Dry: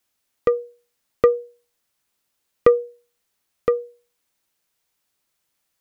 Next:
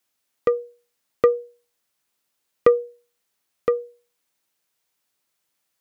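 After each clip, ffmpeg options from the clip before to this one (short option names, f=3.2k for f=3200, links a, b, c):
-af "lowshelf=f=78:g=-11,volume=-1dB"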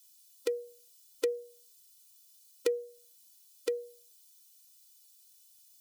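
-af "aexciter=amount=8:drive=6.7:freq=2.9k,acompressor=threshold=-29dB:ratio=2,afftfilt=real='re*eq(mod(floor(b*sr/1024/260),2),1)':imag='im*eq(mod(floor(b*sr/1024/260),2),1)':win_size=1024:overlap=0.75,volume=-4dB"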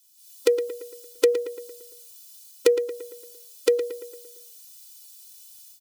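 -filter_complex "[0:a]dynaudnorm=f=150:g=3:m=13dB,asplit=2[a][b];[b]adelay=114,lowpass=f=3.4k:p=1,volume=-9.5dB,asplit=2[c][d];[d]adelay=114,lowpass=f=3.4k:p=1,volume=0.53,asplit=2[e][f];[f]adelay=114,lowpass=f=3.4k:p=1,volume=0.53,asplit=2[g][h];[h]adelay=114,lowpass=f=3.4k:p=1,volume=0.53,asplit=2[i][j];[j]adelay=114,lowpass=f=3.4k:p=1,volume=0.53,asplit=2[k][l];[l]adelay=114,lowpass=f=3.4k:p=1,volume=0.53[m];[c][e][g][i][k][m]amix=inputs=6:normalize=0[n];[a][n]amix=inputs=2:normalize=0"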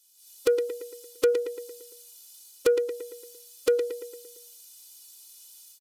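-af "aresample=32000,aresample=44100,asoftclip=type=tanh:threshold=-14.5dB"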